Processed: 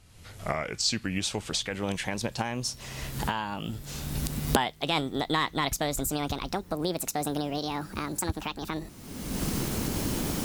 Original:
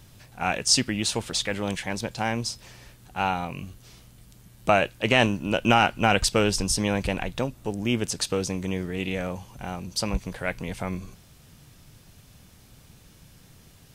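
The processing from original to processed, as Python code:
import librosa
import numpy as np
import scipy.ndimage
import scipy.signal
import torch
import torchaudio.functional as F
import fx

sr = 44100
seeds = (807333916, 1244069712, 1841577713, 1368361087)

y = fx.speed_glide(x, sr, from_pct=79, to_pct=188)
y = fx.recorder_agc(y, sr, target_db=-12.0, rise_db_per_s=37.0, max_gain_db=30)
y = y * librosa.db_to_amplitude(-7.5)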